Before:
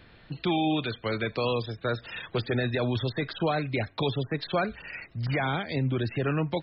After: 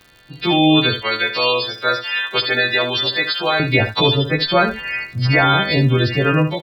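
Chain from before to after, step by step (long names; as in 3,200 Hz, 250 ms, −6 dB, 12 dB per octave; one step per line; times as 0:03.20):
every partial snapped to a pitch grid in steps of 2 semitones
0:01.02–0:03.60: high-pass filter 1,100 Hz 6 dB per octave
automatic gain control gain up to 15 dB
surface crackle 120 per second −35 dBFS
single-tap delay 71 ms −10.5 dB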